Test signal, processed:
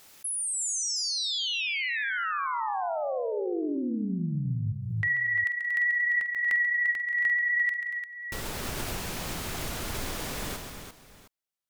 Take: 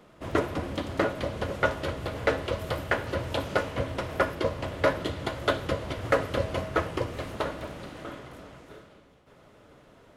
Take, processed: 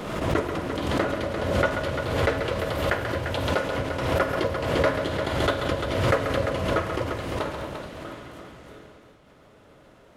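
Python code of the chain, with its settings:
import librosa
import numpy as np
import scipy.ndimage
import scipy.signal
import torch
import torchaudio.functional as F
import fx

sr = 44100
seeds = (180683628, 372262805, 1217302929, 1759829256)

y = fx.vibrato(x, sr, rate_hz=14.0, depth_cents=18.0)
y = fx.echo_multitap(y, sr, ms=(48, 136, 177, 234, 346, 714), db=(-13.0, -8.0, -18.0, -14.0, -8.0, -18.0))
y = fx.pre_swell(y, sr, db_per_s=39.0)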